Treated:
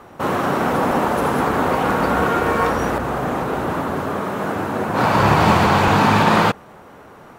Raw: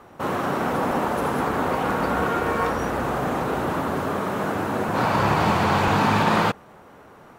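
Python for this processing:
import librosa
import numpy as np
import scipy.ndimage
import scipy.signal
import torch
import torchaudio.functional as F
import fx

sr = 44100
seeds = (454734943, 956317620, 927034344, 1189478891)

y = fx.band_widen(x, sr, depth_pct=70, at=(2.98, 5.67))
y = y * 10.0 ** (5.0 / 20.0)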